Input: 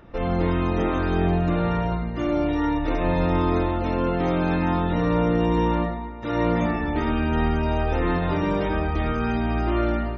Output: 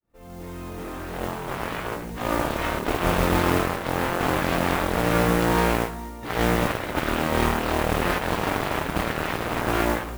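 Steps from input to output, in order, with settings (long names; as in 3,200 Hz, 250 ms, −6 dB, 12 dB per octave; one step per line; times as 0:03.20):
fade in at the beginning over 2.13 s
harmonic generator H 7 −11 dB, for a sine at −9.5 dBFS
noise that follows the level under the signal 16 dB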